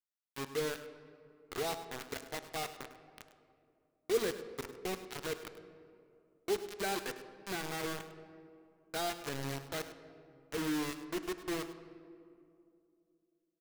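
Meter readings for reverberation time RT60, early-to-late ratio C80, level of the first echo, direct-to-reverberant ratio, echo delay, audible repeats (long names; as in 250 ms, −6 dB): 2.6 s, 10.5 dB, −14.5 dB, 9.0 dB, 102 ms, 1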